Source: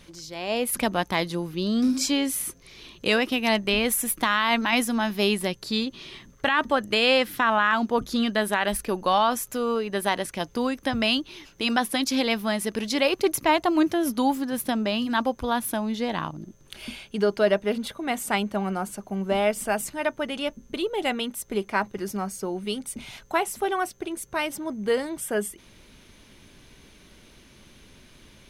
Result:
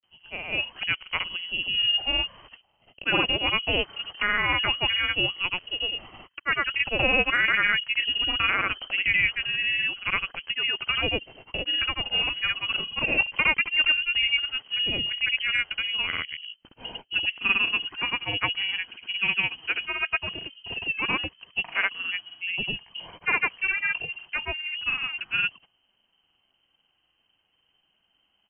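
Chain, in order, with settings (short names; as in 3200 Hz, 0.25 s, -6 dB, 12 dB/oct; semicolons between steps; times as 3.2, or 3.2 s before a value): gate -43 dBFS, range -18 dB; inverted band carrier 3100 Hz; grains, pitch spread up and down by 0 st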